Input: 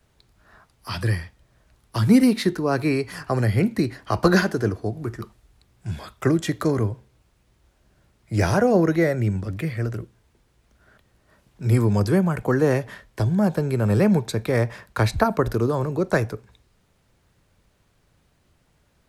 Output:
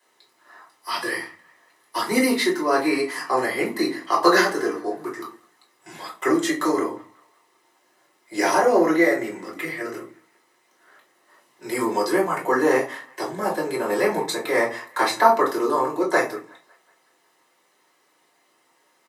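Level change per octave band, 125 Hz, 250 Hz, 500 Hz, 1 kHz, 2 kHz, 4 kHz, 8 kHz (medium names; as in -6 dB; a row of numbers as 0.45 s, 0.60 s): -21.5 dB, -3.0 dB, +1.5 dB, +7.0 dB, +5.0 dB, +4.5 dB, +5.5 dB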